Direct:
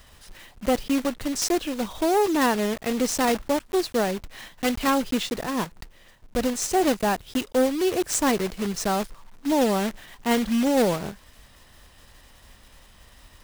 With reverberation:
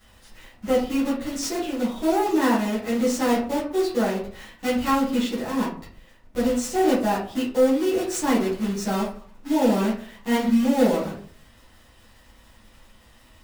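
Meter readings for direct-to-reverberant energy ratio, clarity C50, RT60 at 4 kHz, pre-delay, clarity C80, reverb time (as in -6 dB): -11.0 dB, 5.0 dB, 0.25 s, 7 ms, 10.5 dB, 0.50 s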